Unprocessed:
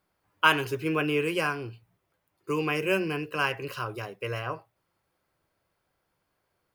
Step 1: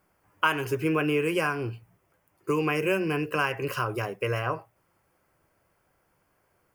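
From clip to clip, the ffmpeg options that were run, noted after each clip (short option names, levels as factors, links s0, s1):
-af "acompressor=threshold=0.0251:ratio=2.5,equalizer=f=3900:t=o:w=0.52:g=-12,volume=2.37"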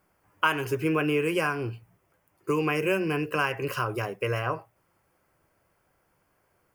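-af anull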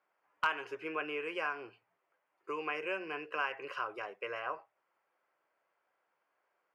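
-af "highpass=580,lowpass=3200,aeval=exprs='clip(val(0),-1,0.168)':c=same,volume=0.447"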